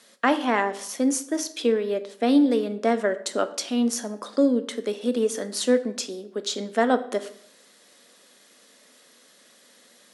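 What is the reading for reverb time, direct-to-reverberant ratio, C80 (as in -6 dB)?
0.70 s, 9.5 dB, 17.0 dB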